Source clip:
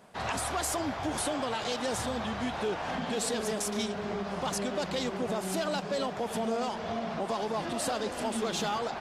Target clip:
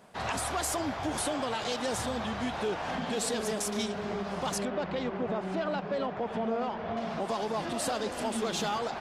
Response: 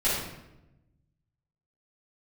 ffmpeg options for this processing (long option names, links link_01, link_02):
-filter_complex "[0:a]asettb=1/sr,asplit=3[link_01][link_02][link_03];[link_01]atrim=end=4.654[link_04];[link_02]atrim=start=4.65:end=6.97,asetpts=PTS-STARTPTS,afade=type=in:duration=0.004:curve=qsin,afade=type=out:start_time=2.316:duration=0.004:curve=qsin,lowpass=2400[link_05];[link_03]atrim=start=6.966[link_06];[link_04][link_05]acrossfade=duration=0.004:curve1=hsin:curve2=qsin[link_07];[link_07][link_06]acrossfade=duration=0.004:curve1=qsin:curve2=hsin"